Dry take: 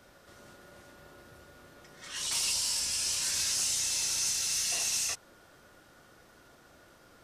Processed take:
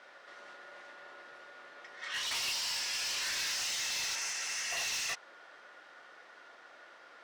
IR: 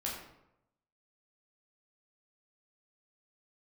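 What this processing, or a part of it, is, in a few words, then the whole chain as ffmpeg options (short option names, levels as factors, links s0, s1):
megaphone: -filter_complex "[0:a]asettb=1/sr,asplit=3[s0][s1][s2];[s0]atrim=end=4.154[s3];[s1]atrim=start=4.15:end=4.77,asetpts=PTS-STARTPTS,afade=t=in:d=0.004:c=qsin,afade=t=out:st=0.616:d=0.004:c=qsin,equalizer=f=3900:t=o:w=0.67:g=-9.5[s4];[s2]atrim=start=4.766[s5];[s3][s4]acrossfade=d=0.004:c1=hsin:c2=qsin[s6];[s6][s5]acrossfade=d=0.004:c1=qsin:c2=hsin,highpass=640,lowpass=3700,equalizer=f=1900:t=o:w=0.37:g=5,asoftclip=type=hard:threshold=0.015,volume=1.78"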